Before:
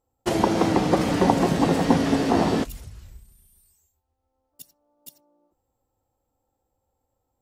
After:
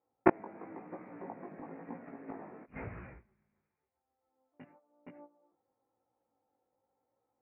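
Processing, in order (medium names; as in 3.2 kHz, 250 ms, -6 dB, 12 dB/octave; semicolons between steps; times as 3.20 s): high-pass 210 Hz 12 dB/octave; gate -58 dBFS, range -14 dB; steep low-pass 2.4 kHz 96 dB/octave; inverted gate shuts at -16 dBFS, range -36 dB; chorus 0.98 Hz, delay 16.5 ms, depth 3.6 ms; trim +13.5 dB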